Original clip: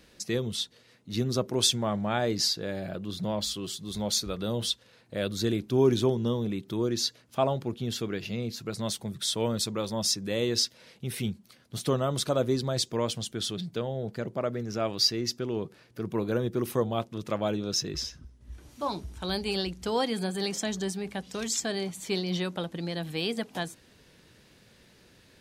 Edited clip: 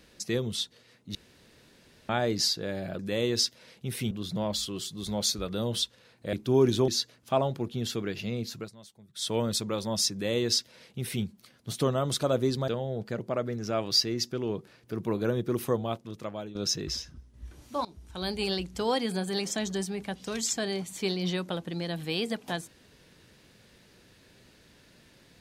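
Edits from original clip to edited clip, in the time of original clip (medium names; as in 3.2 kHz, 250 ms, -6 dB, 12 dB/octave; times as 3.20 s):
1.15–2.09 s: room tone
5.21–5.57 s: delete
6.12–6.94 s: delete
8.63–9.35 s: dip -19.5 dB, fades 0.15 s
10.18–11.30 s: copy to 2.99 s
12.74–13.75 s: delete
16.70–17.62 s: fade out, to -13 dB
18.92–19.45 s: fade in, from -18.5 dB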